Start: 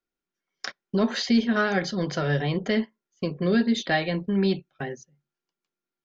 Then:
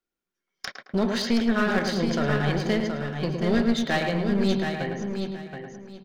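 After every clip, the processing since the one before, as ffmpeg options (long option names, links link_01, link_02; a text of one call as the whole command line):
ffmpeg -i in.wav -filter_complex "[0:a]asplit=2[link_01][link_02];[link_02]adelay=109,lowpass=frequency=2000:poles=1,volume=-5dB,asplit=2[link_03][link_04];[link_04]adelay=109,lowpass=frequency=2000:poles=1,volume=0.45,asplit=2[link_05][link_06];[link_06]adelay=109,lowpass=frequency=2000:poles=1,volume=0.45,asplit=2[link_07][link_08];[link_08]adelay=109,lowpass=frequency=2000:poles=1,volume=0.45,asplit=2[link_09][link_10];[link_10]adelay=109,lowpass=frequency=2000:poles=1,volume=0.45,asplit=2[link_11][link_12];[link_12]adelay=109,lowpass=frequency=2000:poles=1,volume=0.45[link_13];[link_03][link_05][link_07][link_09][link_11][link_13]amix=inputs=6:normalize=0[link_14];[link_01][link_14]amix=inputs=2:normalize=0,aeval=exprs='clip(val(0),-1,0.0562)':channel_layout=same,asplit=2[link_15][link_16];[link_16]aecho=0:1:724|1448|2172:0.473|0.104|0.0229[link_17];[link_15][link_17]amix=inputs=2:normalize=0" out.wav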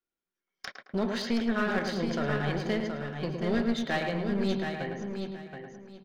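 ffmpeg -i in.wav -af "bass=frequency=250:gain=-2,treble=frequency=4000:gain=-4,volume=-4.5dB" out.wav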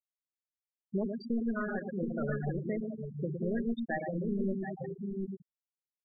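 ffmpeg -i in.wav -af "afftfilt=real='re*gte(hypot(re,im),0.1)':imag='im*gte(hypot(re,im),0.1)':win_size=1024:overlap=0.75,alimiter=limit=-23dB:level=0:latency=1:release=394" out.wav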